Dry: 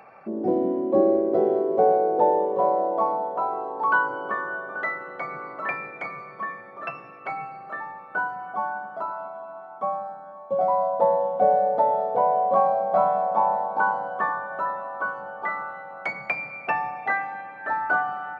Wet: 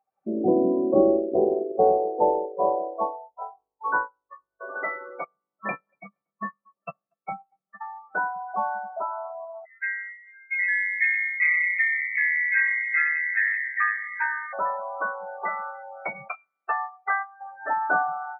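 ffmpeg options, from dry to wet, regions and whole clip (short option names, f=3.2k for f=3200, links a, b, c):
-filter_complex "[0:a]asettb=1/sr,asplit=3[a][b][c];[a]atrim=end=0.944[d];[b]atrim=start=0.94:end=4.61,asetpts=PTS-STARTPTS,afade=t=in:d=0.004:c=qsin,afade=t=out:st=3.666:d=0.004:c=qsin,lowpass=1.9k,aeval=exprs='val(0)+0.00398*(sin(2*PI*50*n/s)+sin(2*PI*2*50*n/s)/2+sin(2*PI*3*50*n/s)/3+sin(2*PI*4*50*n/s)/4+sin(2*PI*5*50*n/s)/5)':c=same,agate=range=-33dB:threshold=-18dB:ratio=3:release=100:detection=peak[e];[c]atrim=start=4.606[f];[d][e]acrossfade=d=0.004:c1=hsin:c2=qsin[g];[g][f]acrossfade=d=0.004:c1=qsin:c2=hsin,asettb=1/sr,asplit=3[h][i][j];[h]atrim=end=5.244[k];[i]atrim=start=5.24:end=7.81,asetpts=PTS-STARTPTS,afade=t=in:d=0.004:c=qsin,afade=t=out:st=2.566:d=0.004:c=qsin,agate=range=-20dB:threshold=-31dB:ratio=16:release=100:detection=peak,equalizer=f=200:t=o:w=0.26:g=15,asplit=2[l][m];[m]adelay=236,lowpass=f=2k:p=1,volume=-17dB,asplit=2[n][o];[o]adelay=236,lowpass=f=2k:p=1,volume=0.44,asplit=2[p][q];[q]adelay=236,lowpass=f=2k:p=1,volume=0.44,asplit=2[r][s];[s]adelay=236,lowpass=f=2k:p=1,volume=0.44[t];[l][n][p][r][t]amix=inputs=5:normalize=0,atrim=end_sample=113337[u];[j]atrim=start=7.806[v];[k][u]acrossfade=d=0.004:c1=hsin:c2=qsin[w];[w][v]acrossfade=d=0.004:c1=qsin:c2=hsin,asettb=1/sr,asplit=3[x][y][z];[x]atrim=end=9.654[aa];[y]atrim=start=9.65:end=14.53,asetpts=PTS-STARTPTS,afade=t=in:d=0.004:c=qsin,afade=t=out:st=4.876:d=0.004:c=qsin,aecho=1:1:162:0.0891,atrim=end_sample=215208,lowpass=f=2.3k:t=q:w=0.5098,lowpass=f=2.3k:t=q:w=0.6013,lowpass=f=2.3k:t=q:w=0.9,lowpass=f=2.3k:t=q:w=2.563,afreqshift=-2700[ab];[z]atrim=start=14.526[ac];[aa][ab]acrossfade=d=0.004:c1=hsin:c2=qsin[ad];[ad][ac]acrossfade=d=0.004:c1=qsin:c2=hsin,asettb=1/sr,asplit=3[ae][af][ag];[ae]atrim=end=16.284[ah];[af]atrim=start=16.28:end=17.41,asetpts=PTS-STARTPTS,afade=t=in:d=0.004:c=qsin,afade=t=out:st=1.126:d=0.004:c=qsin,agate=range=-9dB:threshold=-30dB:ratio=16:release=100:detection=peak,highpass=420,equalizer=f=550:t=q:w=4:g=-10,equalizer=f=880:t=q:w=4:g=-6,equalizer=f=1.3k:t=q:w=4:g=10,lowpass=f=2.1k:w=0.5412,lowpass=f=2.1k:w=1.3066[ai];[ag]atrim=start=17.406[aj];[ah][ai]acrossfade=d=0.004:c1=hsin:c2=qsin[ak];[ak][aj]acrossfade=d=0.004:c1=qsin:c2=hsin,lowpass=f=1.1k:p=1,afftdn=nr=33:nf=-33,dynaudnorm=f=140:g=3:m=9dB,volume=-5.5dB"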